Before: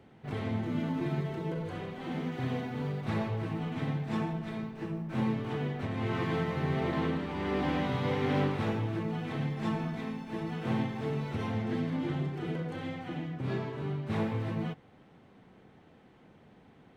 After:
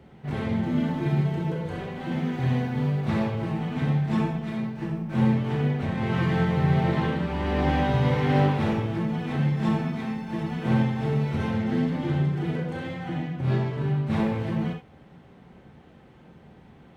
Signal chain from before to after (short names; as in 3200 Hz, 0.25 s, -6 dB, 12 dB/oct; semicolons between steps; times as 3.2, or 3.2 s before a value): HPF 40 Hz; low shelf 110 Hz +10.5 dB; on a send: reverb, pre-delay 3 ms, DRR 2 dB; on the sum: gain +3 dB